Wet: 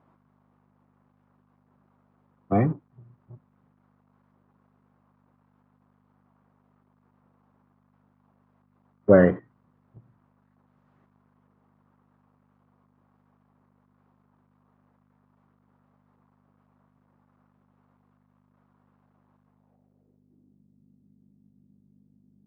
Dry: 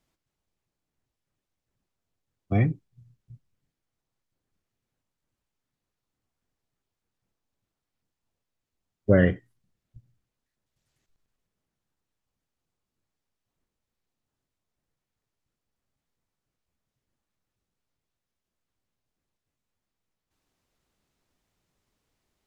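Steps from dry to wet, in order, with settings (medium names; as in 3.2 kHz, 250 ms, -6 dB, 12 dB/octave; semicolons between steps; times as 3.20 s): companding laws mixed up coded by mu; hum 50 Hz, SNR 25 dB; low-pass sweep 1.1 kHz -> 220 Hz, 19.43–20.63 s; high-pass 170 Hz 12 dB/octave; trim +3.5 dB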